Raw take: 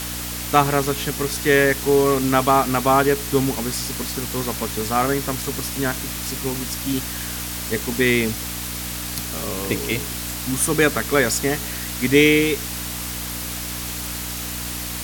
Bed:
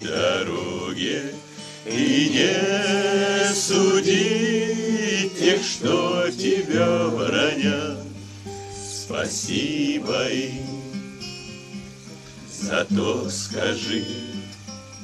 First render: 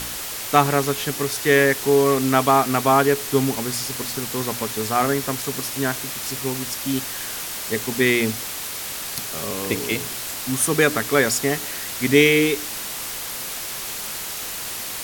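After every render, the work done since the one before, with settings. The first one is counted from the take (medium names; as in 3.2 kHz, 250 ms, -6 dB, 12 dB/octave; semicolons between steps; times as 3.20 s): de-hum 60 Hz, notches 5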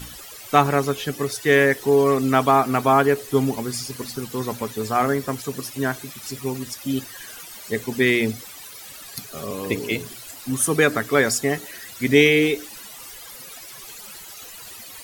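noise reduction 15 dB, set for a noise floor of -31 dBFS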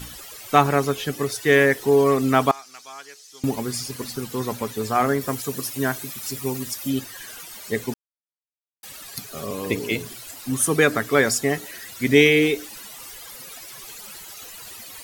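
2.51–3.44 s: band-pass filter 5.6 kHz, Q 2.6; 5.21–6.90 s: treble shelf 8.7 kHz +7.5 dB; 7.94–8.83 s: mute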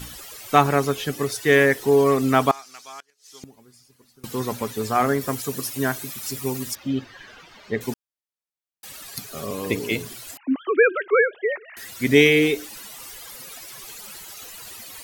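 3.00–4.24 s: inverted gate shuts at -31 dBFS, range -25 dB; 6.75–7.81 s: distance through air 220 m; 10.37–11.77 s: formants replaced by sine waves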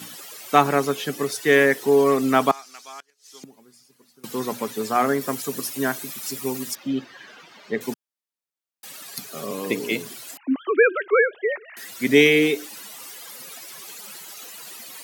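high-pass 160 Hz 24 dB/octave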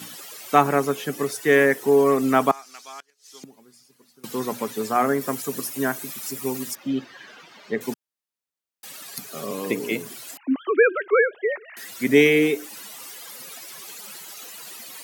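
dynamic bell 4 kHz, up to -7 dB, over -41 dBFS, Q 1.2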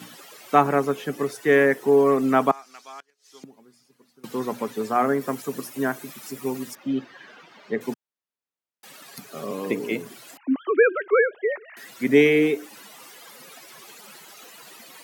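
high-pass 100 Hz; treble shelf 3.6 kHz -9.5 dB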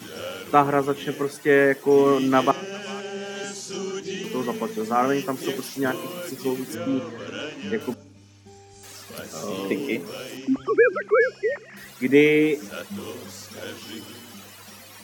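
add bed -13 dB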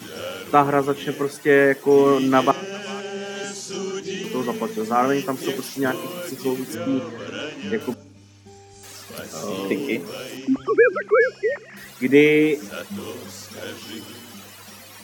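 trim +2 dB; peak limiter -2 dBFS, peak gain reduction 1 dB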